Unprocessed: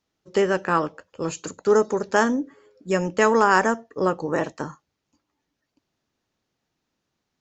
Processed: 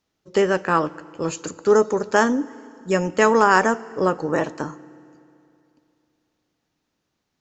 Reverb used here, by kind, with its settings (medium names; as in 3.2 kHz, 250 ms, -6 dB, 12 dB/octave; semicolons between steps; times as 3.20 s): FDN reverb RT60 2.7 s, high-frequency decay 0.85×, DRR 19 dB; trim +2 dB